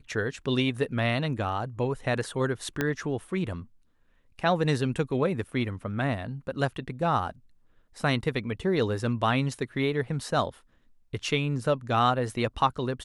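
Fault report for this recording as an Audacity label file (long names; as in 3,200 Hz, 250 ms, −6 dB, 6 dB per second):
2.810000	2.810000	click −12 dBFS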